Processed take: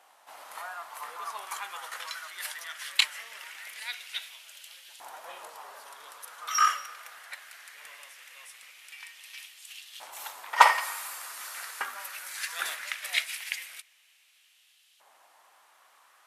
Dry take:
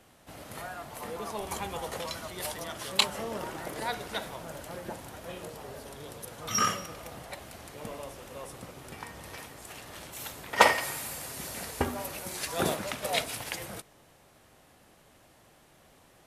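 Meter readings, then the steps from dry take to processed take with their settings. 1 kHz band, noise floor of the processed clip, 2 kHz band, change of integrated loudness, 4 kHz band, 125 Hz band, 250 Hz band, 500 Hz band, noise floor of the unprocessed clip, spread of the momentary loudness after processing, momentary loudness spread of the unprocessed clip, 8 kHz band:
+3.5 dB, -63 dBFS, +2.5 dB, +3.0 dB, +0.5 dB, under -40 dB, under -25 dB, -11.5 dB, -60 dBFS, 21 LU, 16 LU, -1.0 dB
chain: LFO high-pass saw up 0.2 Hz 840–3200 Hz; trim -1.5 dB

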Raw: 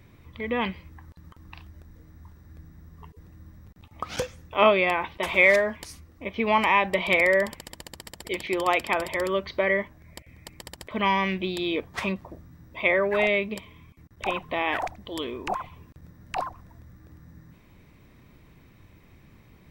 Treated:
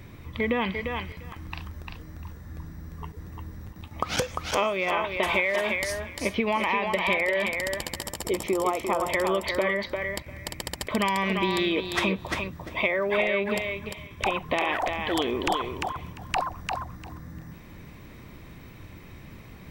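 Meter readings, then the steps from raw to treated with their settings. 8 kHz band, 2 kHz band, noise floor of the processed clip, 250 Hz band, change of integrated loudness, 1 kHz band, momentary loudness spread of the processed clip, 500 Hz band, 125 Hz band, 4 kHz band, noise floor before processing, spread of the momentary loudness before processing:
+7.0 dB, -2.0 dB, -46 dBFS, +1.5 dB, -2.0 dB, -1.0 dB, 20 LU, -1.5 dB, +3.5 dB, +2.0 dB, -55 dBFS, 21 LU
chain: time-frequency box 8.01–9.09 s, 1.4–5.2 kHz -11 dB; compression 16:1, threshold -30 dBFS, peak gain reduction 18 dB; on a send: thinning echo 348 ms, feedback 17%, high-pass 420 Hz, level -3.5 dB; on the sum: trim +8 dB

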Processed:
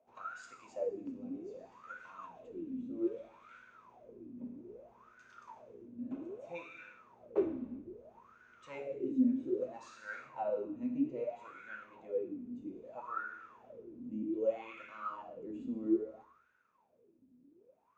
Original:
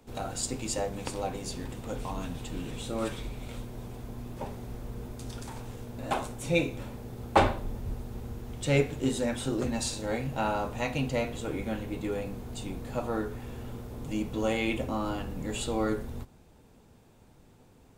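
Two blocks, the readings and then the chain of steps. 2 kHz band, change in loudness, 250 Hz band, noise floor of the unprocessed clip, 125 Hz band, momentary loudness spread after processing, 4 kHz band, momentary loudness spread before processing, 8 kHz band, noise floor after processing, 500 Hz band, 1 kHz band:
-12.0 dB, -6.5 dB, -4.5 dB, -58 dBFS, -24.5 dB, 20 LU, under -25 dB, 13 LU, under -25 dB, -71 dBFS, -6.5 dB, -12.5 dB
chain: graphic EQ with 31 bands 800 Hz -10 dB, 2.5 kHz +7 dB, 6.3 kHz +11 dB, 10 kHz -12 dB; gated-style reverb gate 410 ms falling, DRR 2.5 dB; wah-wah 0.62 Hz 250–1500 Hz, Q 17; trim +6.5 dB

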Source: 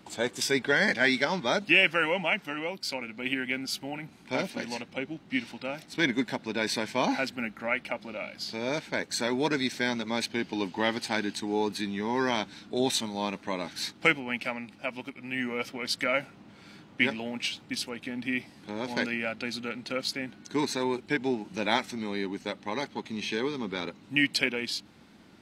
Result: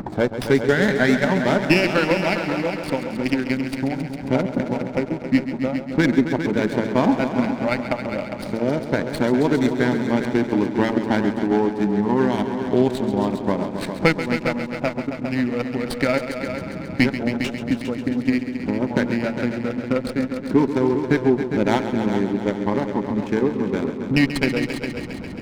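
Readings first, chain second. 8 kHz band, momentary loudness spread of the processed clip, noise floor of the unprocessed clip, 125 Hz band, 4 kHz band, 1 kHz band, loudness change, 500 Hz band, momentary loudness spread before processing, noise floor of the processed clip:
no reading, 7 LU, -54 dBFS, +16.0 dB, -1.5 dB, +6.5 dB, +8.0 dB, +10.5 dB, 11 LU, -32 dBFS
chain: local Wiener filter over 15 samples; tilt EQ -2.5 dB/octave; de-hum 112 Hz, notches 11; in parallel at -0.5 dB: peak limiter -17 dBFS, peak gain reduction 8.5 dB; on the sum: upward compressor, threshold -23 dBFS; transient shaper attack +5 dB, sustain -9 dB; on a send: multi-head delay 135 ms, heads all three, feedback 52%, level -11.5 dB; on the sum: sliding maximum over 5 samples

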